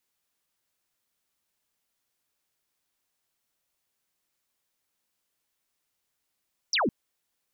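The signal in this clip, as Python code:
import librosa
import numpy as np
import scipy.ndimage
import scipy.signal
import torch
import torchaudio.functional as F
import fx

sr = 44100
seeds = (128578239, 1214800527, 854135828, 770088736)

y = fx.laser_zap(sr, level_db=-22, start_hz=6200.0, end_hz=180.0, length_s=0.16, wave='sine')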